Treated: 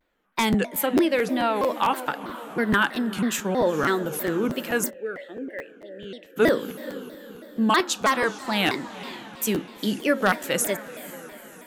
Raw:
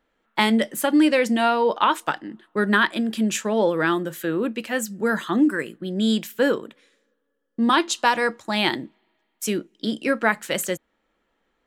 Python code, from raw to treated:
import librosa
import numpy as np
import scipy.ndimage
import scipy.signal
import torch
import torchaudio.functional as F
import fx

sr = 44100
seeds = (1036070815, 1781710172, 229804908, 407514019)

y = fx.peak_eq(x, sr, hz=13000.0, db=14.0, octaves=0.21)
y = fx.echo_diffused(y, sr, ms=457, feedback_pct=51, wet_db=-15)
y = fx.rev_fdn(y, sr, rt60_s=1.6, lf_ratio=1.0, hf_ratio=0.3, size_ms=11.0, drr_db=18.5)
y = 10.0 ** (-7.5 / 20.0) * (np.abs((y / 10.0 ** (-7.5 / 20.0) + 3.0) % 4.0 - 2.0) - 1.0)
y = fx.high_shelf(y, sr, hz=8200.0, db=-9.0, at=(0.86, 1.56))
y = fx.vowel_filter(y, sr, vowel='e', at=(4.89, 6.36), fade=0.02)
y = fx.rider(y, sr, range_db=3, speed_s=2.0)
y = fx.buffer_crackle(y, sr, first_s=0.3, period_s=0.22, block=512, kind='repeat')
y = fx.vibrato_shape(y, sr, shape='saw_down', rate_hz=3.1, depth_cents=250.0)
y = y * 10.0 ** (-2.5 / 20.0)